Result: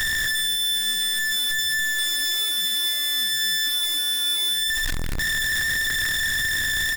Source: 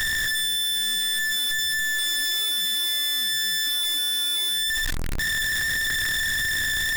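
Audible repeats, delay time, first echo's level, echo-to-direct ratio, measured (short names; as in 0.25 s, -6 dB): 2, 0.206 s, -17.0 dB, -16.5 dB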